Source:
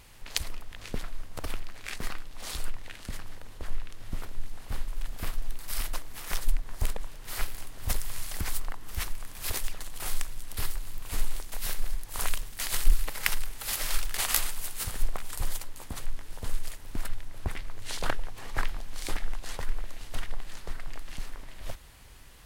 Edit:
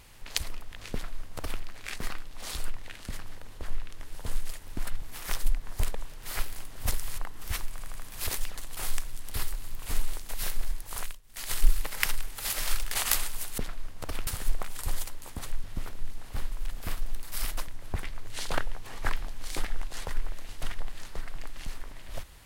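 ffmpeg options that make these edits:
-filter_complex "[0:a]asplit=13[a][b][c][d][e][f][g][h][i][j][k][l][m];[a]atrim=end=4.002[n];[b]atrim=start=16.178:end=17.202[o];[c]atrim=start=6.038:end=8.202[p];[d]atrim=start=8.648:end=9.262[q];[e]atrim=start=9.178:end=9.262[r];[f]atrim=start=9.178:end=9.262[s];[g]atrim=start=9.178:end=12.43,asetpts=PTS-STARTPTS,afade=t=out:st=2.872:d=0.38:silence=0.0794328[t];[h]atrim=start=12.43:end=12.46,asetpts=PTS-STARTPTS,volume=-22dB[u];[i]atrim=start=12.46:end=14.812,asetpts=PTS-STARTPTS,afade=t=in:d=0.38:silence=0.0794328[v];[j]atrim=start=0.928:end=1.622[w];[k]atrim=start=14.808:end=16.182[x];[l]atrim=start=3.998:end=6.042[y];[m]atrim=start=17.198[z];[n][o]acrossfade=d=0.004:c1=hsin:c2=hsin[aa];[aa][p]acrossfade=d=0.004:c1=hsin:c2=hsin[ab];[ab][q]acrossfade=d=0.004:c1=hsin:c2=hsin[ac];[ac][r]acrossfade=d=0.004:c1=hsin:c2=hsin[ad];[ad][s]acrossfade=d=0.004:c1=hsin:c2=hsin[ae];[t][u][v]concat=n=3:v=0:a=1[af];[ae][af]acrossfade=d=0.004:c1=hsin:c2=hsin[ag];[ag][w]acrossfade=d=0.004:c1=hsin:c2=hsin[ah];[ah][x]acrossfade=d=0.004:c1=hsin:c2=hsin[ai];[ai][y]acrossfade=d=0.004:c1=hsin:c2=hsin[aj];[aj][z]acrossfade=d=0.004:c1=hsin:c2=hsin"

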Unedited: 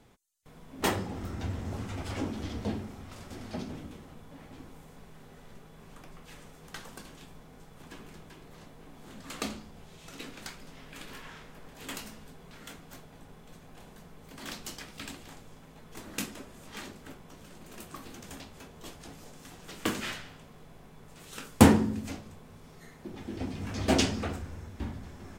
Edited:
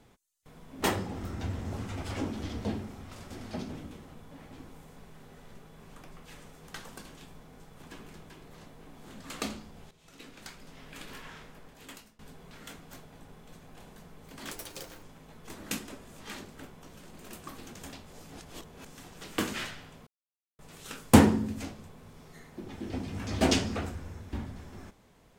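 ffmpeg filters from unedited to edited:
-filter_complex "[0:a]asplit=9[a][b][c][d][e][f][g][h][i];[a]atrim=end=9.91,asetpts=PTS-STARTPTS,afade=t=out:st=9.906:d=0.004:c=hsin:silence=0.211349[j];[b]atrim=start=9.91:end=12.19,asetpts=PTS-STARTPTS,afade=t=in:d=0.98:silence=0.211349,afade=t=out:st=1.52:d=0.76:silence=0.0630957[k];[c]atrim=start=12.19:end=14.514,asetpts=PTS-STARTPTS,afade=t=in:d=0.004:c=hsin:silence=0.0630957[l];[d]atrim=start=14.51:end=15.5,asetpts=PTS-STARTPTS,asetrate=84231,aresample=44100,atrim=end_sample=22858,asetpts=PTS-STARTPTS[m];[e]atrim=start=15.496:end=18.602[n];[f]atrim=start=18.598:end=19.322,asetpts=PTS-STARTPTS,areverse[o];[g]atrim=start=19.318:end=20.54,asetpts=PTS-STARTPTS,afade=t=out:st=1.218:d=0.004:c=hsin[p];[h]atrim=start=20.54:end=21.06,asetpts=PTS-STARTPTS,volume=0[q];[i]atrim=start=21.06,asetpts=PTS-STARTPTS,afade=t=in:d=0.004:c=hsin[r];[j][k][l]concat=n=3:v=0:a=1[s];[s][m]acrossfade=d=0.004:c1=hsin:c2=hsin[t];[t][n]acrossfade=d=0.004:c1=hsin:c2=hsin[u];[u][o]acrossfade=d=0.004:c1=hsin:c2=hsin[v];[p][q][r]concat=n=3:v=0:a=1[w];[v][w]acrossfade=d=0.004:c1=hsin:c2=hsin"

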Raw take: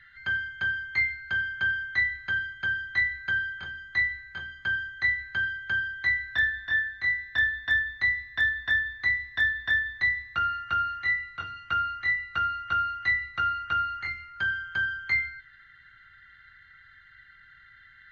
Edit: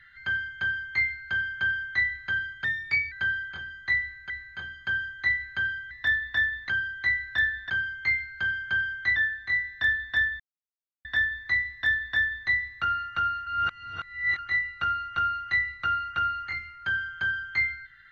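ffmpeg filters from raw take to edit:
-filter_complex "[0:a]asplit=12[a][b][c][d][e][f][g][h][i][j][k][l];[a]atrim=end=2.644[m];[b]atrim=start=2.64:end=3.19,asetpts=PTS-STARTPTS,asetrate=50715,aresample=44100,atrim=end_sample=21091,asetpts=PTS-STARTPTS[n];[c]atrim=start=3.186:end=4.372[o];[d]atrim=start=4.078:end=5.692[p];[e]atrim=start=9.238:end=10.022[q];[f]atrim=start=5.688:end=6.702[r];[g]atrim=start=0.598:end=2.062[s];[h]atrim=start=6.698:end=7.94,asetpts=PTS-STARTPTS,afade=t=out:st=1.238:d=0.004:c=hsin[t];[i]atrim=start=7.94:end=8.59,asetpts=PTS-STARTPTS,volume=0[u];[j]atrim=start=8.59:end=11.012,asetpts=PTS-STARTPTS,afade=t=in:d=0.004:c=hsin[v];[k]atrim=start=11.008:end=11.932,asetpts=PTS-STARTPTS,areverse[w];[l]atrim=start=11.928[x];[m][n]acrossfade=d=0.004:c1=hsin:c2=hsin[y];[y][o]acrossfade=d=0.004:c1=hsin:c2=hsin[z];[z][p]acrossfade=d=0.004:c1=hsin:c2=hsin[aa];[aa][q]acrossfade=d=0.004:c1=hsin:c2=hsin[ab];[ab][r]acrossfade=d=0.004:c1=hsin:c2=hsin[ac];[ac][s]acrossfade=d=0.004:c1=hsin:c2=hsin[ad];[t][u][v]concat=n=3:v=0:a=1[ae];[ad][ae]acrossfade=d=0.004:c1=hsin:c2=hsin[af];[af][w]acrossfade=d=0.004:c1=hsin:c2=hsin[ag];[ag][x]acrossfade=d=0.004:c1=hsin:c2=hsin"

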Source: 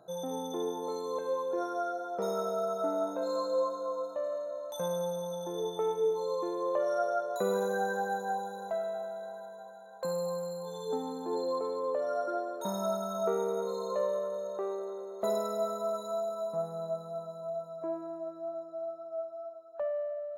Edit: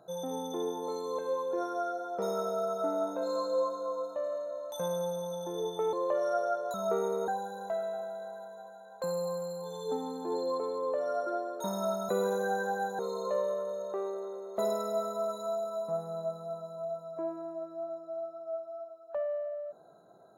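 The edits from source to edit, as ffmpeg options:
-filter_complex "[0:a]asplit=6[a][b][c][d][e][f];[a]atrim=end=5.932[g];[b]atrim=start=6.578:end=7.392[h];[c]atrim=start=13.098:end=13.642[i];[d]atrim=start=8.288:end=13.102[j];[e]atrim=start=7.388:end=8.292[k];[f]atrim=start=13.638[l];[g][h]acrossfade=d=0.004:c1=hsin:c2=hsin[m];[m][i]acrossfade=d=0.004:c1=hsin:c2=hsin[n];[n][j]acrossfade=d=0.004:c1=hsin:c2=hsin[o];[o][k]acrossfade=d=0.004:c1=hsin:c2=hsin[p];[p][l]acrossfade=d=0.004:c1=hsin:c2=hsin"

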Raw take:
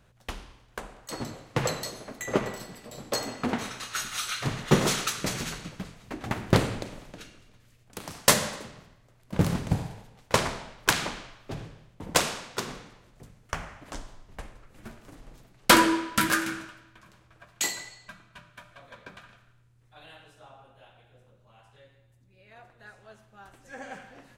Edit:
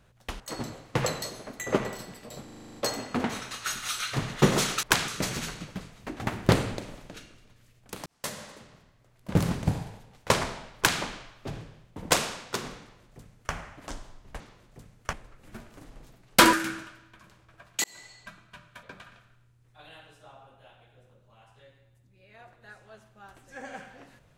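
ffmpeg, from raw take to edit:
-filter_complex "[0:a]asplit=18[a][b][c][d][e][f][g][h][i][j][k][l][m][n][o][p][q][r];[a]atrim=end=0.402[s];[b]atrim=start=1.008:end=3.092[t];[c]atrim=start=3.048:end=3.092[u];[d]atrim=start=3.048:end=3.092[v];[e]atrim=start=3.048:end=3.092[w];[f]atrim=start=3.048:end=3.092[x];[g]atrim=start=3.048:end=3.092[y];[h]atrim=start=3.048:end=3.092[z];[i]atrim=start=3.048:end=3.092[aa];[j]atrim=start=3.048:end=5.122[ab];[k]atrim=start=10.798:end=11.052[ac];[l]atrim=start=5.118:end=8.1,asetpts=PTS-STARTPTS,afade=t=out:st=2.978:d=0.004:c=hsin[ad];[m]atrim=start=8.1:end=14.442,asetpts=PTS-STARTPTS,afade=t=in:d=1.29[ae];[n]atrim=start=12.838:end=13.572[af];[o]atrim=start=14.438:end=15.842[ag];[p]atrim=start=16.348:end=17.66,asetpts=PTS-STARTPTS,afade=t=out:st=1.308:d=0.004:c=hsin[ah];[q]atrim=start=17.66:end=18.652,asetpts=PTS-STARTPTS,afade=t=in:d=0.36[ai];[r]atrim=start=18.998[aj];[s][t]acrossfade=d=0.004:c1=hsin:c2=hsin[ak];[ak][u]acrossfade=d=0.004:c1=hsin:c2=hsin[al];[al][v]acrossfade=d=0.004:c1=hsin:c2=hsin[am];[am][w]acrossfade=d=0.004:c1=hsin:c2=hsin[an];[an][x]acrossfade=d=0.004:c1=hsin:c2=hsin[ao];[ao][y]acrossfade=d=0.004:c1=hsin:c2=hsin[ap];[ap][z]acrossfade=d=0.004:c1=hsin:c2=hsin[aq];[aq][aa]acrossfade=d=0.004:c1=hsin:c2=hsin[ar];[ar][ab]acrossfade=d=0.004:c1=hsin:c2=hsin[as];[as][ac]acrossfade=d=0.004:c1=hsin:c2=hsin[at];[ad][ae]concat=n=2:v=0:a=1[au];[at][au]acrossfade=d=0.004:c1=hsin:c2=hsin[av];[av][af]acrossfade=d=0.004:c1=hsin:c2=hsin[aw];[aw][ag]acrossfade=d=0.004:c1=hsin:c2=hsin[ax];[ah][ai]concat=n=2:v=0:a=1[ay];[ax][ay]acrossfade=d=0.004:c1=hsin:c2=hsin[az];[az][aj]acrossfade=d=0.004:c1=hsin:c2=hsin"

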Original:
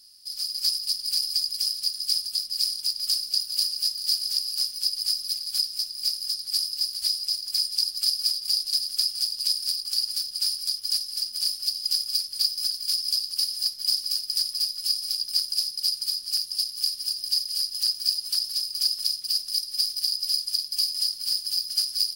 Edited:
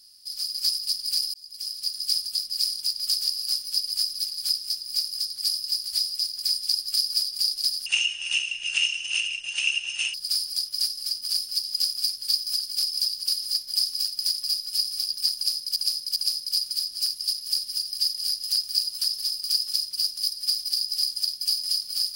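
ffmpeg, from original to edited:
-filter_complex "[0:a]asplit=7[a][b][c][d][e][f][g];[a]atrim=end=1.34,asetpts=PTS-STARTPTS,afade=t=out:st=1.336:d=0.004:c=hsin[h];[b]atrim=start=1.34:end=3.162,asetpts=PTS-STARTPTS,afade=t=in:d=0.67[i];[c]atrim=start=4.248:end=8.954[j];[d]atrim=start=8.95:end=10.25,asetpts=PTS-STARTPTS,asetrate=25137,aresample=44100[k];[e]atrim=start=10.246:end=15.872[l];[f]atrim=start=15.468:end=15.872[m];[g]atrim=start=15.468[n];[h][i]concat=n=2:v=0:a=1[o];[o][j]acrossfade=d=0.004:c1=hsin:c2=hsin[p];[p][k]acrossfade=d=0.004:c1=hsin:c2=hsin[q];[q][l]acrossfade=d=0.004:c1=hsin:c2=hsin[r];[r][m]acrossfade=d=0.004:c1=hsin:c2=hsin[s];[s][n]acrossfade=d=0.004:c1=hsin:c2=hsin"

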